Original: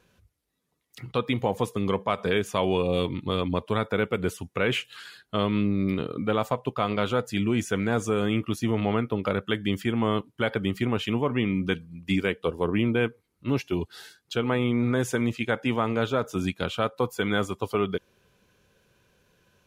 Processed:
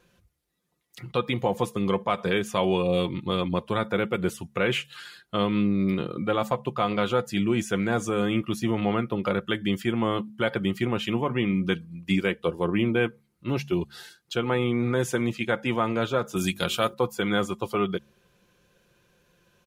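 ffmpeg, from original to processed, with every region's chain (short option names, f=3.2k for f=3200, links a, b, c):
-filter_complex "[0:a]asettb=1/sr,asplit=3[a][b][c];[a]atrim=end=16.364[d];[b]atrim=start=16.36:end=16.94,asetpts=PTS-STARTPTS,afade=t=in:d=0.004:c=qsin,afade=t=out:st=0.576:d=0.004:c=qsin,aemphasis=mode=production:type=75kf,bandreject=f=50:t=h:w=6,bandreject=f=100:t=h:w=6,bandreject=f=150:t=h:w=6,bandreject=f=200:t=h:w=6,bandreject=f=250:t=h:w=6,bandreject=f=300:t=h:w=6,bandreject=f=350:t=h:w=6,bandreject=f=400:t=h:w=6[e];[c]atrim=start=16.936[f];[d][e]acrossfade=d=0.004:c1=hsin:c2=qsin[g];[g][f]acrossfade=d=0.004:c1=qsin:c2=hsin,aecho=1:1:5.7:0.41,bandreject=f=71.18:t=h:w=4,bandreject=f=142.36:t=h:w=4,bandreject=f=213.54:t=h:w=4"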